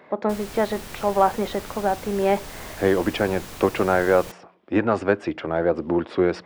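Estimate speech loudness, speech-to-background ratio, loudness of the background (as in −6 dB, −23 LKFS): −23.5 LKFS, 14.5 dB, −38.0 LKFS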